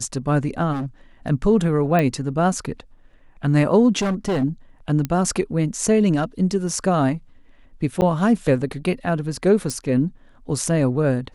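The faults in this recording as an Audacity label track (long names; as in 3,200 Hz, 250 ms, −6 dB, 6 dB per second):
0.720000	0.860000	clipping −22.5 dBFS
1.990000	1.990000	click −9 dBFS
3.990000	4.440000	clipping −18 dBFS
5.050000	5.050000	click −11 dBFS
8.010000	8.020000	drop-out 9.3 ms
9.700000	9.700000	click −14 dBFS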